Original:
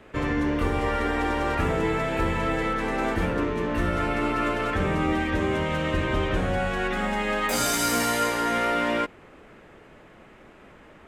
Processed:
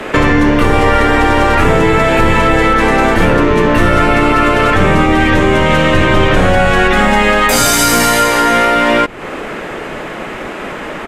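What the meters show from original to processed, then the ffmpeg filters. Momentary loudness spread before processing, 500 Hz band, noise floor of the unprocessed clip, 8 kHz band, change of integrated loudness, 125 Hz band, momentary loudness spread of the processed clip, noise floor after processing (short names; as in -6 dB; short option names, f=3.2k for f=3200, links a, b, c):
3 LU, +15.0 dB, -51 dBFS, +14.5 dB, +15.0 dB, +14.5 dB, 14 LU, -25 dBFS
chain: -filter_complex "[0:a]lowshelf=f=260:g=-5,acrossover=split=150[a][b];[a]aeval=exprs='max(val(0),0)':c=same[c];[b]acompressor=threshold=-36dB:ratio=8[d];[c][d]amix=inputs=2:normalize=0,apsyclip=31dB,aresample=32000,aresample=44100,volume=-3dB"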